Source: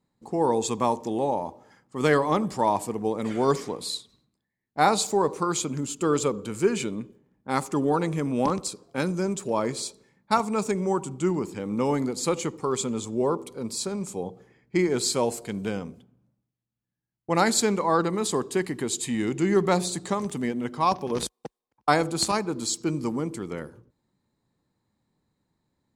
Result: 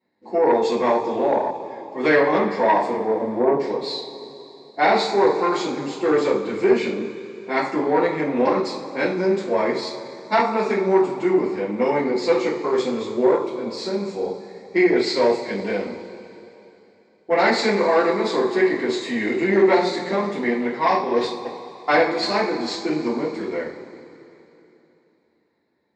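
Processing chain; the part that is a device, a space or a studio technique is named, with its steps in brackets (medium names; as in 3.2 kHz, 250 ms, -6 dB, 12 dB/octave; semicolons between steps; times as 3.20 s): 2.97–3.60 s: steep low-pass 990 Hz 36 dB/octave; two-slope reverb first 0.38 s, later 3.2 s, from -18 dB, DRR -9.5 dB; guitar amplifier (valve stage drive 8 dB, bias 0.4; tone controls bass -12 dB, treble +3 dB; cabinet simulation 81–4000 Hz, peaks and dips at 360 Hz +5 dB, 1.3 kHz -8 dB, 2 kHz +6 dB, 3.1 kHz -10 dB)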